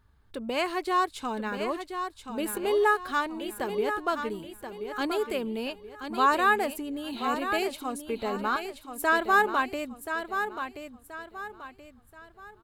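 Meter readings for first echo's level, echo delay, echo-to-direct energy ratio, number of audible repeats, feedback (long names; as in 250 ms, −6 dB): −8.0 dB, 1,029 ms, −7.5 dB, 3, 35%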